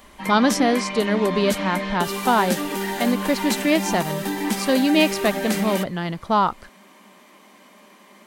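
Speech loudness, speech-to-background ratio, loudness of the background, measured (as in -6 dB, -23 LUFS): -22.0 LUFS, 4.5 dB, -26.5 LUFS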